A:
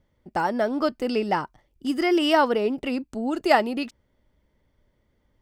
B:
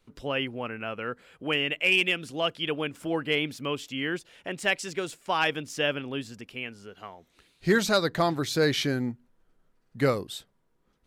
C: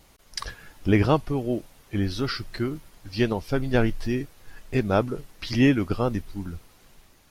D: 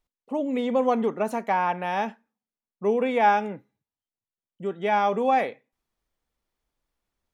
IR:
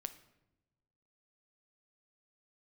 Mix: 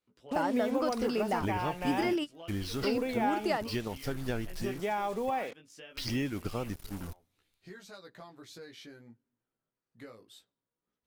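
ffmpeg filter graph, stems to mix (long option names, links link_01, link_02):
-filter_complex "[0:a]acompressor=threshold=-22dB:ratio=6,volume=-5.5dB[link_01];[1:a]highpass=frequency=170:poles=1,acompressor=threshold=-30dB:ratio=6,flanger=delay=16:depth=2.2:speed=0.26,volume=-14dB,asplit=2[link_02][link_03];[link_03]volume=-14dB[link_04];[2:a]aemphasis=mode=production:type=cd,adelay=550,volume=-7dB,asplit=3[link_05][link_06][link_07];[link_05]atrim=end=5.3,asetpts=PTS-STARTPTS,afade=type=out:start_time=5.296:duration=0.004:curve=hsin[link_08];[link_06]atrim=start=5.3:end=5.9,asetpts=PTS-STARTPTS,volume=0[link_09];[link_07]atrim=start=5.9,asetpts=PTS-STARTPTS,afade=type=in:duration=0.004:curve=hsin[link_10];[link_08][link_09][link_10]concat=n=3:v=0:a=1,asplit=2[link_11][link_12];[link_12]volume=-23dB[link_13];[3:a]volume=-1.5dB,asplit=2[link_14][link_15];[link_15]apad=whole_len=238976[link_16];[link_01][link_16]sidechaingate=range=-40dB:threshold=-49dB:ratio=16:detection=peak[link_17];[link_11][link_14]amix=inputs=2:normalize=0,acrusher=bits=6:mix=0:aa=0.5,acompressor=threshold=-32dB:ratio=3,volume=0dB[link_18];[4:a]atrim=start_sample=2205[link_19];[link_04][link_13]amix=inputs=2:normalize=0[link_20];[link_20][link_19]afir=irnorm=-1:irlink=0[link_21];[link_17][link_02][link_18][link_21]amix=inputs=4:normalize=0"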